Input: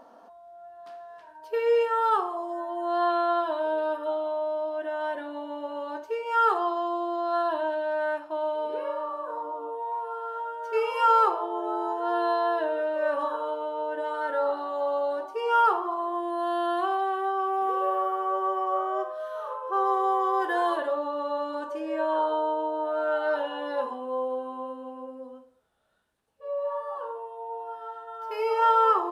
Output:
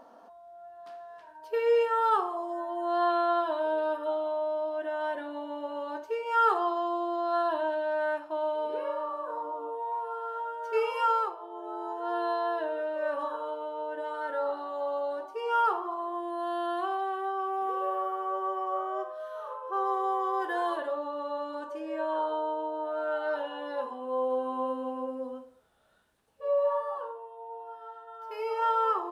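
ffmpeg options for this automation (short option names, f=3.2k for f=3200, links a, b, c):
-af "volume=17.5dB,afade=t=out:st=10.84:d=0.52:silence=0.237137,afade=t=in:st=11.36:d=0.77:silence=0.334965,afade=t=in:st=23.93:d=0.78:silence=0.334965,afade=t=out:st=26.52:d=0.65:silence=0.281838"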